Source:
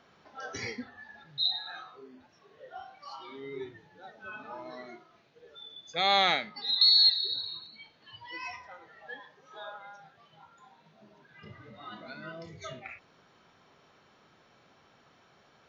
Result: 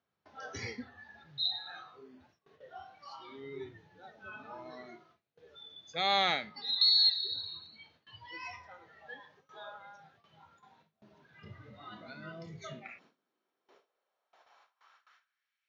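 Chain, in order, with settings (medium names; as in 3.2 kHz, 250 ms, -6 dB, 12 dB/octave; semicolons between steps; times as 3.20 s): high-pass sweep 80 Hz -> 2.2 kHz, 11.92–15.62 s; gate with hold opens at -49 dBFS; trim -4 dB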